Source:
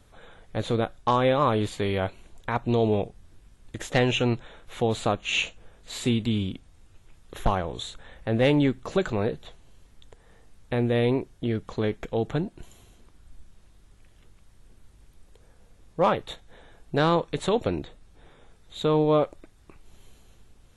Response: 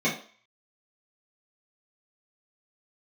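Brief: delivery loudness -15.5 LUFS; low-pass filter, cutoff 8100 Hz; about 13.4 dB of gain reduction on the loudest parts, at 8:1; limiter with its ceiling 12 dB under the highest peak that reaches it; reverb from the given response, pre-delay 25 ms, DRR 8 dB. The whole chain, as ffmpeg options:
-filter_complex "[0:a]lowpass=8.1k,acompressor=threshold=-31dB:ratio=8,alimiter=level_in=5dB:limit=-24dB:level=0:latency=1,volume=-5dB,asplit=2[a][b];[1:a]atrim=start_sample=2205,adelay=25[c];[b][c]afir=irnorm=-1:irlink=0,volume=-21.5dB[d];[a][d]amix=inputs=2:normalize=0,volume=23dB"

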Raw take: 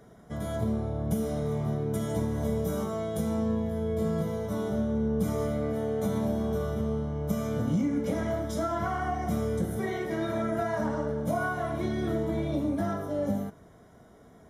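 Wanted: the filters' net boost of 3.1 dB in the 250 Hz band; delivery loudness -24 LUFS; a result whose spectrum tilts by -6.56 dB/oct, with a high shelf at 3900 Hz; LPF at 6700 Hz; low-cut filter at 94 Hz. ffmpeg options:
-af "highpass=94,lowpass=6.7k,equalizer=f=250:t=o:g=4,highshelf=f=3.9k:g=-8.5,volume=4.5dB"

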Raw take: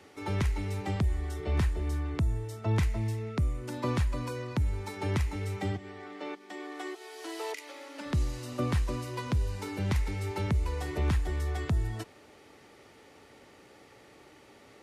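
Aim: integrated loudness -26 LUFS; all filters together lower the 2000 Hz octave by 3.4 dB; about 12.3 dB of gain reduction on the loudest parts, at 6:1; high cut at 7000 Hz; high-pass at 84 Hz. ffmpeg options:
-af "highpass=84,lowpass=7k,equalizer=f=2k:t=o:g=-4,acompressor=threshold=-39dB:ratio=6,volume=17.5dB"

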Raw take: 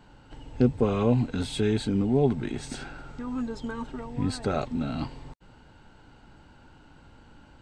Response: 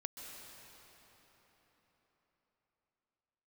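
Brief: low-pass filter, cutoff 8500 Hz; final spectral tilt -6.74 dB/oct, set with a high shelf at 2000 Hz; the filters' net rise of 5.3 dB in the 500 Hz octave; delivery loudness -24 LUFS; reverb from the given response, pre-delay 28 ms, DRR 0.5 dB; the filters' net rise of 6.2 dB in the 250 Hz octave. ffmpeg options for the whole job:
-filter_complex "[0:a]lowpass=8.5k,equalizer=f=250:t=o:g=6,equalizer=f=500:t=o:g=4,highshelf=f=2k:g=6.5,asplit=2[a][b];[1:a]atrim=start_sample=2205,adelay=28[c];[b][c]afir=irnorm=-1:irlink=0,volume=1dB[d];[a][d]amix=inputs=2:normalize=0,volume=-4dB"

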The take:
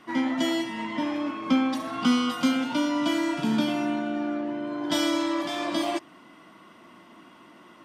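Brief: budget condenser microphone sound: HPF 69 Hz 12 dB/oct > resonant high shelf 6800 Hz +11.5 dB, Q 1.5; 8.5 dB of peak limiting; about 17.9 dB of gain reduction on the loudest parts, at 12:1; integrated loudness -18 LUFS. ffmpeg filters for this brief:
-af "acompressor=threshold=-36dB:ratio=12,alimiter=level_in=11dB:limit=-24dB:level=0:latency=1,volume=-11dB,highpass=69,highshelf=f=6.8k:t=q:w=1.5:g=11.5,volume=25.5dB"

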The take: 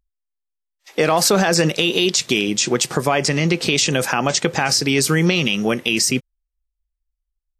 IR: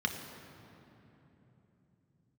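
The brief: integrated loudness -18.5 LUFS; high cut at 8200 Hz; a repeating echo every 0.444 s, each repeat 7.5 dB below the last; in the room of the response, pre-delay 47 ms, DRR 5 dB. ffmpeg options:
-filter_complex "[0:a]lowpass=8.2k,aecho=1:1:444|888|1332|1776|2220:0.422|0.177|0.0744|0.0312|0.0131,asplit=2[a][b];[1:a]atrim=start_sample=2205,adelay=47[c];[b][c]afir=irnorm=-1:irlink=0,volume=-11.5dB[d];[a][d]amix=inputs=2:normalize=0,volume=-2.5dB"

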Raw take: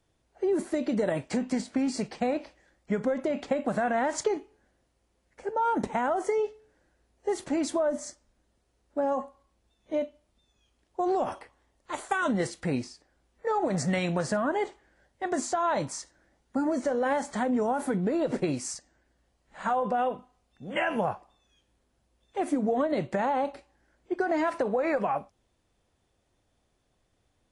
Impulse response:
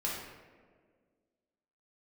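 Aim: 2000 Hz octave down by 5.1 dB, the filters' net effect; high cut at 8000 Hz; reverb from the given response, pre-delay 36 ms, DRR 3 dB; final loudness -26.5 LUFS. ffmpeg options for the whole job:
-filter_complex "[0:a]lowpass=8k,equalizer=f=2k:t=o:g=-7,asplit=2[a][b];[1:a]atrim=start_sample=2205,adelay=36[c];[b][c]afir=irnorm=-1:irlink=0,volume=-7.5dB[d];[a][d]amix=inputs=2:normalize=0,volume=2dB"

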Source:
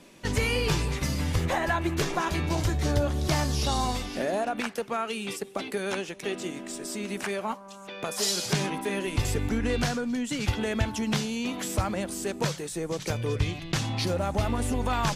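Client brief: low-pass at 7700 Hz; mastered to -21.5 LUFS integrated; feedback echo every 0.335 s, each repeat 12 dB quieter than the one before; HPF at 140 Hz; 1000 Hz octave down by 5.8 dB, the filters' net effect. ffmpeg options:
-af "highpass=140,lowpass=7.7k,equalizer=f=1k:t=o:g=-8,aecho=1:1:335|670|1005:0.251|0.0628|0.0157,volume=9.5dB"

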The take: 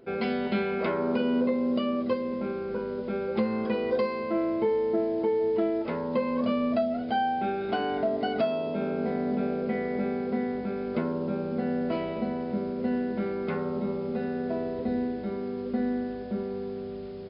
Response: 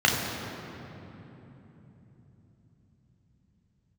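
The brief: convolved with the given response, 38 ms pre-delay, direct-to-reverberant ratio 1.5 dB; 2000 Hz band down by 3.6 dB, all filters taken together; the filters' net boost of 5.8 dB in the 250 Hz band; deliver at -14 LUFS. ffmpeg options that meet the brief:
-filter_complex "[0:a]equalizer=f=250:t=o:g=6.5,equalizer=f=2k:t=o:g=-5,asplit=2[a][b];[1:a]atrim=start_sample=2205,adelay=38[c];[b][c]afir=irnorm=-1:irlink=0,volume=-19dB[d];[a][d]amix=inputs=2:normalize=0,volume=8dB"

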